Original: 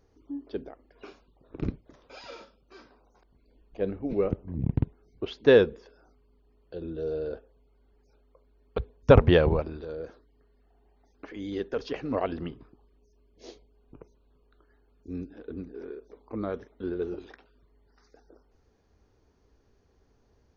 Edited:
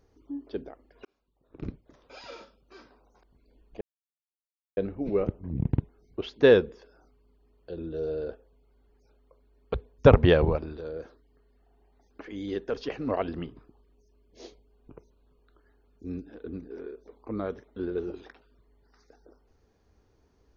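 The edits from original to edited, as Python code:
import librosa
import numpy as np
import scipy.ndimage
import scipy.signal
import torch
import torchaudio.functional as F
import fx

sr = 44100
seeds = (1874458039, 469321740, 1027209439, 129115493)

y = fx.edit(x, sr, fx.fade_in_span(start_s=1.05, length_s=1.19),
    fx.insert_silence(at_s=3.81, length_s=0.96), tone=tone)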